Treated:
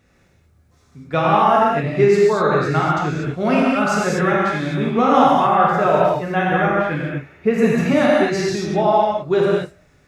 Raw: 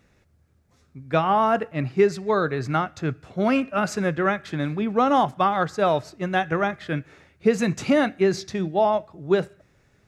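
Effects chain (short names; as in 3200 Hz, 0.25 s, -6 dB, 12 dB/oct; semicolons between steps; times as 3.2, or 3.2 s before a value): 5.32–7.91 band shelf 5800 Hz -9.5 dB; non-linear reverb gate 0.27 s flat, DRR -5.5 dB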